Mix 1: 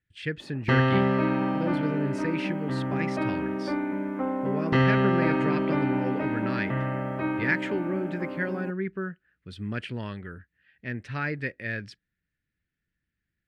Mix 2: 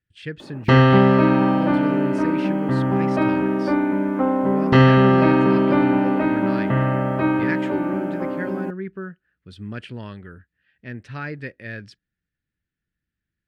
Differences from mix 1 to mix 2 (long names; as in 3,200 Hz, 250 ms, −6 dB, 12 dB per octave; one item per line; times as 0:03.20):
background +9.0 dB
master: add parametric band 2,100 Hz −4.5 dB 0.57 octaves